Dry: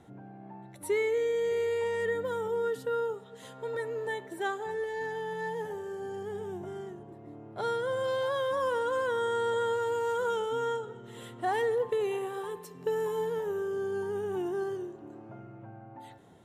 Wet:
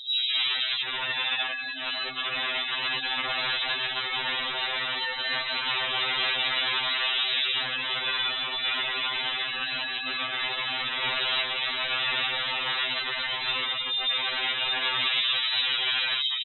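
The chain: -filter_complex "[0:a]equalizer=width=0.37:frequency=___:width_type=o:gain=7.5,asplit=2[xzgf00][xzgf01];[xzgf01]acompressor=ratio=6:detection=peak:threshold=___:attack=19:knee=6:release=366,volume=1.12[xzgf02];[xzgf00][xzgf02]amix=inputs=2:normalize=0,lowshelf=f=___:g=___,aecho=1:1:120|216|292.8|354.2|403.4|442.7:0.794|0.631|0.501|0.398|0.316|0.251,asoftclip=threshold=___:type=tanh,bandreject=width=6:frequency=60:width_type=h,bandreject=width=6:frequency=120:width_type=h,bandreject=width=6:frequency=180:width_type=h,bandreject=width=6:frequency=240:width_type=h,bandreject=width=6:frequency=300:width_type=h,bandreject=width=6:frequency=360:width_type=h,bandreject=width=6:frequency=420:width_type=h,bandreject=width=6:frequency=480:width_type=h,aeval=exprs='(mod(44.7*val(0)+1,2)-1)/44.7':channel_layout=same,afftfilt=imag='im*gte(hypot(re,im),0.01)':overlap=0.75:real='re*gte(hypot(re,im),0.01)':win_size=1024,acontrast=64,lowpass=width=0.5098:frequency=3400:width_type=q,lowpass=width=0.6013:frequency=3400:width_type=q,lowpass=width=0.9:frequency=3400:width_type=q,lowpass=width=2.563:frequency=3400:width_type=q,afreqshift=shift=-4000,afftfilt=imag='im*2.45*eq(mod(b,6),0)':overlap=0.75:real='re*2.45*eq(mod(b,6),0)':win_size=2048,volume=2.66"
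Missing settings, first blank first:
1100, 0.01, 69, 11, 0.0631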